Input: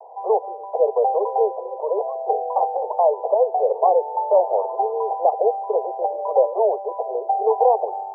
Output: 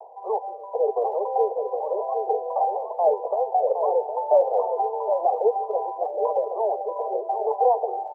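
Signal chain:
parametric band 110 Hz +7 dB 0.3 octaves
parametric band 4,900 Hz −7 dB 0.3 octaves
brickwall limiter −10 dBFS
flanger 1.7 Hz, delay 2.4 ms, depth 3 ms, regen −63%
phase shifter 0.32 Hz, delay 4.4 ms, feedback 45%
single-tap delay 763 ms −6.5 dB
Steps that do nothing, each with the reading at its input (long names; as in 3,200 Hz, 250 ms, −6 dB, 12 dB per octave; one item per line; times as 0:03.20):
parametric band 110 Hz: nothing at its input below 340 Hz
parametric band 4,900 Hz: nothing at its input above 1,100 Hz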